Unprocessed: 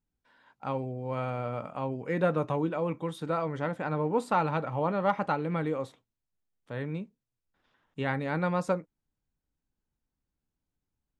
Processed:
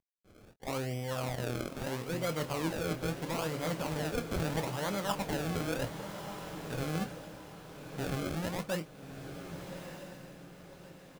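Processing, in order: CVSD coder 32 kbps; reverse; compression 6:1, threshold -37 dBFS, peak gain reduction 15 dB; reverse; decimation with a swept rate 32×, swing 100% 0.76 Hz; doubling 25 ms -11 dB; echo that smears into a reverb 1231 ms, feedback 42%, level -8 dB; trim +5 dB

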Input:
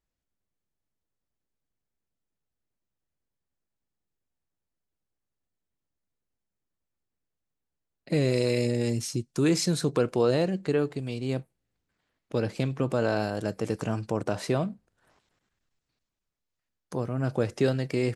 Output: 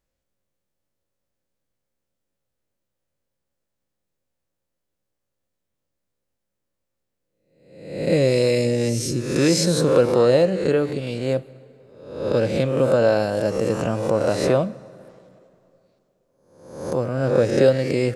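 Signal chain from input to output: reverse spectral sustain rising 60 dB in 0.77 s; peaking EQ 540 Hz +10.5 dB 0.25 oct; plate-style reverb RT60 2.9 s, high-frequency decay 0.65×, DRR 19 dB; trim +3.5 dB

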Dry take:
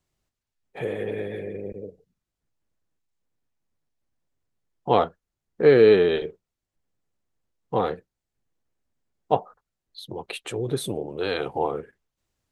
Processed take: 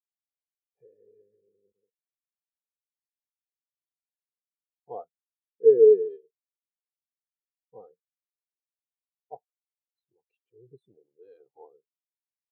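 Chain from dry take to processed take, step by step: spectral contrast expander 2.5:1; trim -3 dB

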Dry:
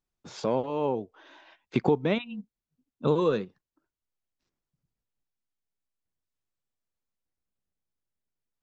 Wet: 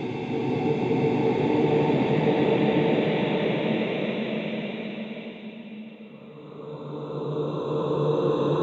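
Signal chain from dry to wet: Paulstretch 5.7×, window 1.00 s, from 1.57 s; echo that smears into a reverb 694 ms, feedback 51%, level -15.5 dB; trim +3.5 dB

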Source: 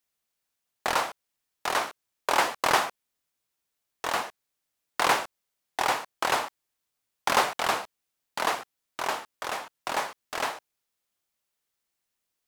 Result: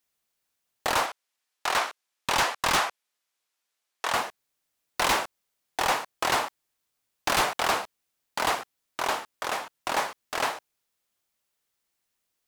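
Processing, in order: 1.06–4.13 s: frequency weighting A; wavefolder -19 dBFS; trim +2.5 dB

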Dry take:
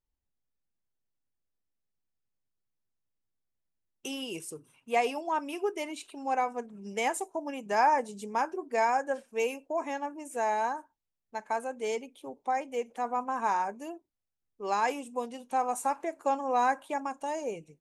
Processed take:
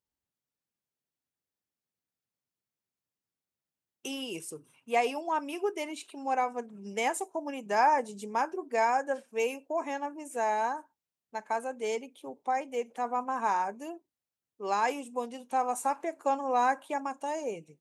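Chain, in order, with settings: high-pass 110 Hz

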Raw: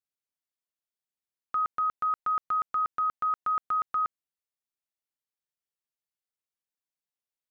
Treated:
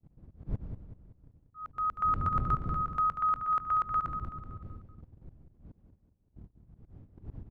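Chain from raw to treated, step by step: wind noise 110 Hz -31 dBFS; gate -41 dBFS, range -33 dB; slow attack 444 ms; volume shaper 105 bpm, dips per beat 1, -22 dB, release 113 ms; feedback delay 189 ms, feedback 44%, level -9 dB

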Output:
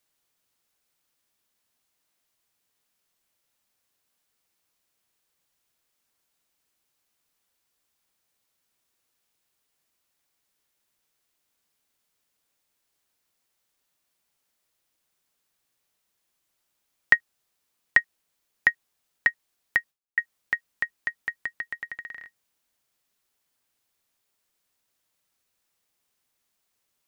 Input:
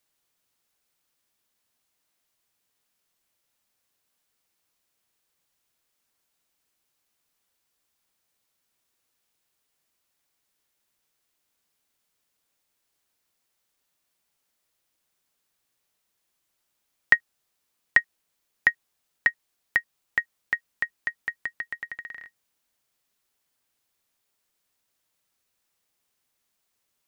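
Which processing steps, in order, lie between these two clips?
19.79–20.20 s: gate with hold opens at -48 dBFS

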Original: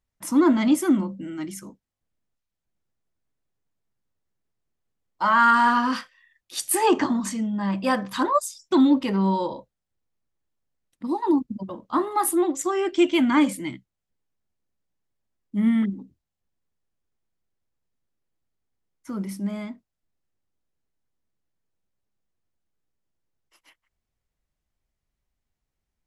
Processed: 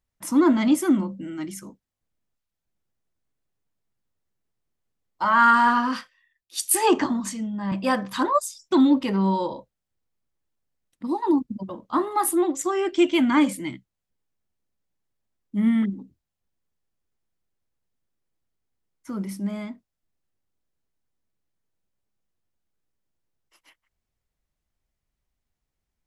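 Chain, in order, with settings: 5.24–7.72 s: three bands expanded up and down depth 40%

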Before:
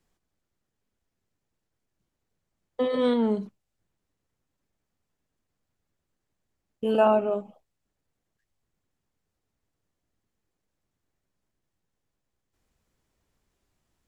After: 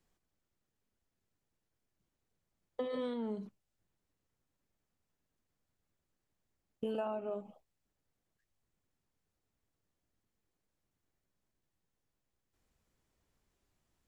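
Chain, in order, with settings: compression 10:1, threshold -30 dBFS, peak gain reduction 15 dB; trim -4 dB

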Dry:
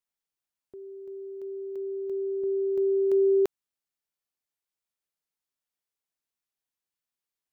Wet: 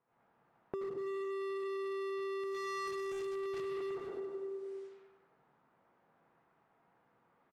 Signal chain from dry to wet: in parallel at -5.5 dB: integer overflow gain 25.5 dB; 1.06–1.53 s: on the sum: comb 2.3 ms, depth 72%; reverberation RT60 1.3 s, pre-delay 72 ms, DRR -9.5 dB; resampled via 22.05 kHz; band-stop 590 Hz, Q 12; overdrive pedal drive 28 dB, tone 1 kHz, clips at -9.5 dBFS; hard clipper -25.5 dBFS, distortion -7 dB; peaking EQ 140 Hz +10.5 dB 0.8 oct; feedback delay 100 ms, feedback 56%, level -11.5 dB; compression 8:1, threshold -39 dBFS, peak gain reduction 17 dB; level-controlled noise filter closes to 990 Hz, open at -40.5 dBFS

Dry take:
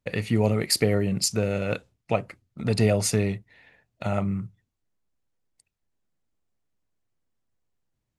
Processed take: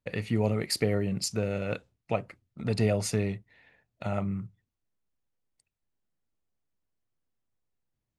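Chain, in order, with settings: treble shelf 6.2 kHz -5.5 dB; trim -4.5 dB

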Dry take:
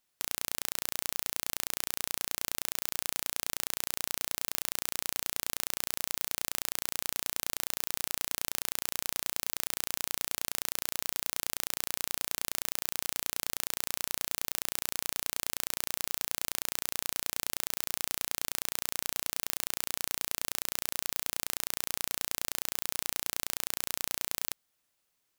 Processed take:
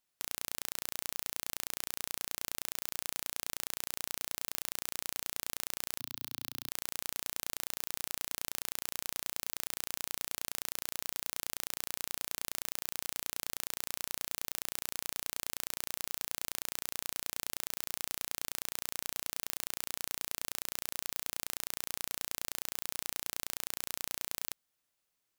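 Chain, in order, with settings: 5.99–6.69 s: graphic EQ 125/250/500/2000/4000/8000 Hz +6/+7/-12/-6/+4/-11 dB; trim -4.5 dB

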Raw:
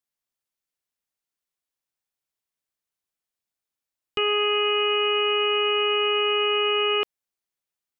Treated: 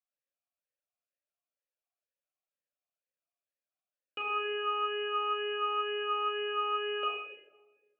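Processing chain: simulated room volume 780 m³, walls mixed, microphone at 2.2 m; talking filter a-e 2.1 Hz

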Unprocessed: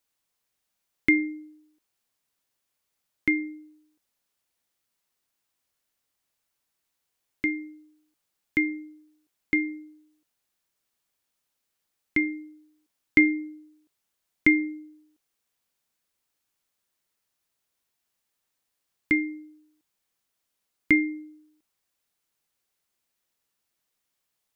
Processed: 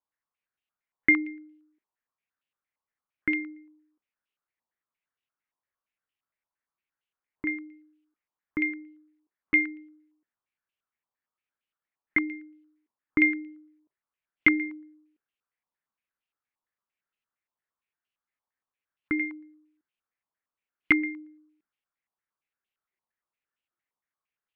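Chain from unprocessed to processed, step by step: spectral noise reduction 8 dB; step-sequenced low-pass 8.7 Hz 1–2.8 kHz; trim -4 dB

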